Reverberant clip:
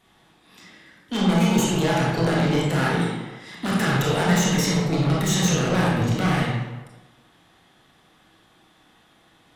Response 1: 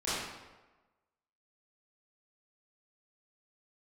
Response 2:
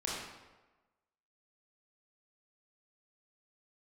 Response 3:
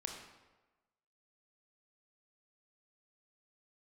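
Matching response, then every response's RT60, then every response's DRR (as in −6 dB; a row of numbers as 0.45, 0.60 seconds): 2; 1.2, 1.2, 1.2 seconds; −13.0, −5.5, 2.0 decibels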